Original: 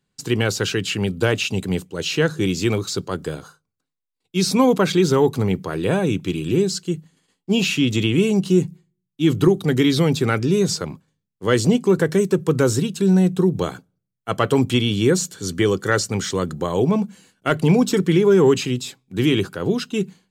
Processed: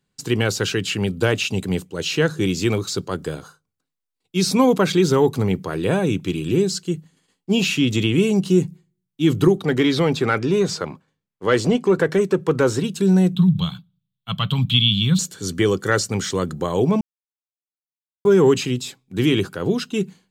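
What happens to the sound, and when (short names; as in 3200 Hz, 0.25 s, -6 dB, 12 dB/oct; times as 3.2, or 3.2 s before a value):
9.57–12.84 overdrive pedal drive 11 dB, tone 1800 Hz, clips at -5 dBFS
13.35–15.19 EQ curve 100 Hz 0 dB, 170 Hz +8 dB, 360 Hz -23 dB, 560 Hz -17 dB, 1100 Hz -4 dB, 1800 Hz -11 dB, 3600 Hz +12 dB, 5500 Hz -14 dB, 9700 Hz -12 dB, 14000 Hz -2 dB
17.01–18.25 mute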